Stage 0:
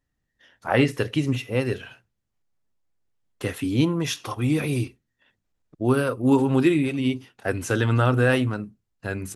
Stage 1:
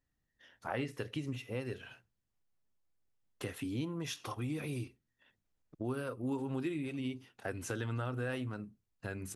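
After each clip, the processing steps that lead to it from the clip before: compressor 2.5:1, threshold -34 dBFS, peak gain reduction 13.5 dB; gain -5.5 dB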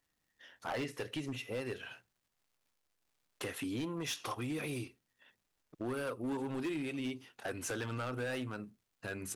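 low shelf 210 Hz -11 dB; hard clip -37 dBFS, distortion -12 dB; crackle 290/s -72 dBFS; gain +4.5 dB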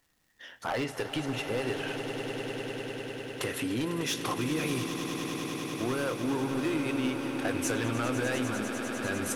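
in parallel at 0 dB: compressor, threshold -45 dBFS, peak gain reduction 10 dB; on the sum: swelling echo 0.1 s, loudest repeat 8, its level -12 dB; gain +3.5 dB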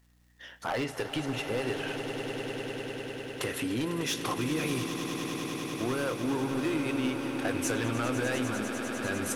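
hum 60 Hz, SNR 32 dB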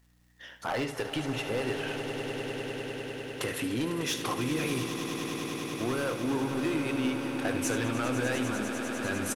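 echo 73 ms -11.5 dB

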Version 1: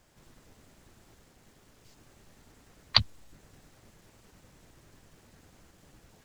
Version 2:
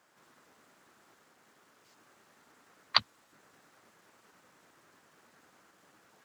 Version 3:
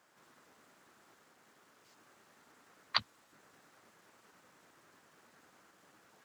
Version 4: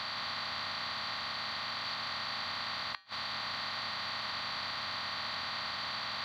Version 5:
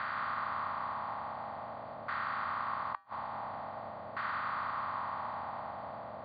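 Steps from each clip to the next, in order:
HPF 240 Hz 12 dB/oct; bell 1300 Hz +9 dB 1.3 oct; gain -5 dB
limiter -10.5 dBFS, peak gain reduction 6 dB; gain -1 dB
per-bin compression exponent 0.2; flipped gate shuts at -19 dBFS, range -42 dB; resonator 89 Hz, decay 0.42 s, harmonics odd, mix 50%; gain +3 dB
LFO low-pass saw down 0.48 Hz 600–1500 Hz

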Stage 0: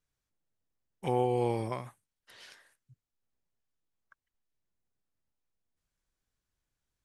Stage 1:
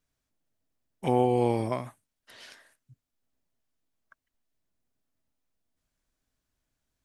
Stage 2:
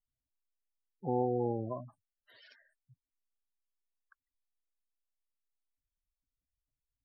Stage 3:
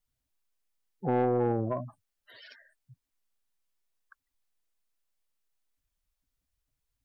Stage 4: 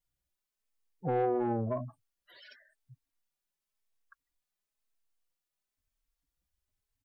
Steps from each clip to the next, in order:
small resonant body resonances 260/640 Hz, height 7 dB; gain +3.5 dB
spectral gate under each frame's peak -10 dB strong; gain -7 dB
soft clip -27.5 dBFS, distortion -13 dB; gain +8 dB
endless flanger 3.8 ms +0.96 Hz

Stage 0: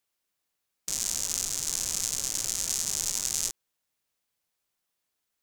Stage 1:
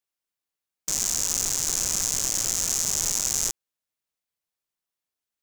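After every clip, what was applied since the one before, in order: sample leveller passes 3; gain -1.5 dB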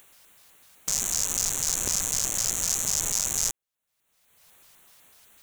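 upward compressor, threshold -30 dBFS; LFO notch square 4 Hz 320–5000 Hz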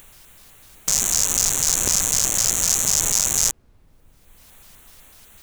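added noise brown -60 dBFS; gain +7 dB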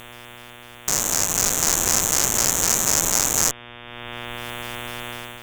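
added harmonics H 2 -7 dB, 4 -9 dB, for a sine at -1.5 dBFS; buzz 120 Hz, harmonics 30, -41 dBFS -1 dB/oct; AGC gain up to 9 dB; gain -1 dB

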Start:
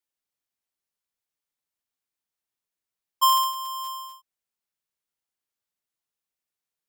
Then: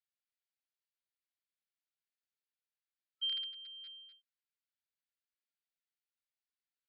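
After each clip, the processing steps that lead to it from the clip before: FFT band-pass 1300–5000 Hz; gain -7 dB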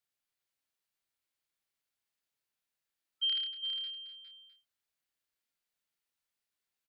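doubler 29 ms -6.5 dB; echo 0.406 s -7.5 dB; gain +4.5 dB

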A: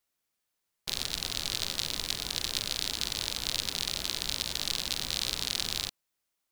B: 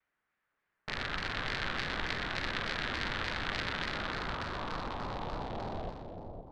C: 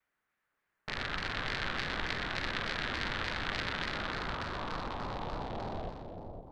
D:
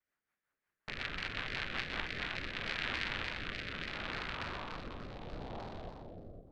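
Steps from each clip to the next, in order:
low-pass sweep 1700 Hz -> 540 Hz, 3.72–6.45; split-band echo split 780 Hz, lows 0.514 s, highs 0.126 s, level -5 dB; shaped vibrato saw down 3.4 Hz, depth 160 cents; gain +2.5 dB
ending taper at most 200 dB/s
dynamic EQ 2500 Hz, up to +7 dB, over -51 dBFS, Q 1.9; rotary speaker horn 5.5 Hz, later 0.7 Hz, at 1.73; gain -3.5 dB

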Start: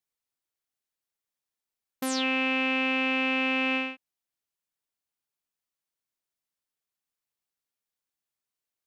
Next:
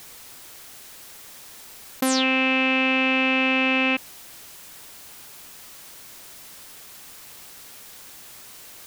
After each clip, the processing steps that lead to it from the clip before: fast leveller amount 100%; gain +5.5 dB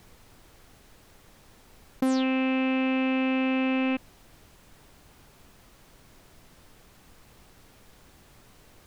tilt -3.5 dB/oct; gain -7 dB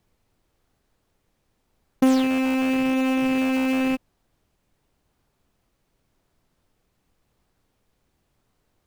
in parallel at -7 dB: decimation with a swept rate 19×, swing 60% 0.9 Hz; on the sum: upward expander 2.5:1, over -35 dBFS; gain +6 dB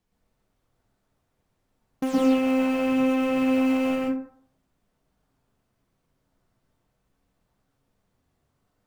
flange 0.42 Hz, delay 3.7 ms, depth 9.3 ms, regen -42%; plate-style reverb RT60 0.6 s, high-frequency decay 0.4×, pre-delay 0.105 s, DRR -4 dB; gain -4.5 dB

